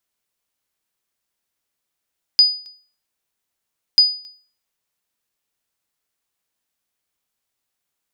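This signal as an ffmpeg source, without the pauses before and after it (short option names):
-f lavfi -i "aevalsrc='0.596*(sin(2*PI*4950*mod(t,1.59))*exp(-6.91*mod(t,1.59)/0.42)+0.0447*sin(2*PI*4950*max(mod(t,1.59)-0.27,0))*exp(-6.91*max(mod(t,1.59)-0.27,0)/0.42))':d=3.18:s=44100"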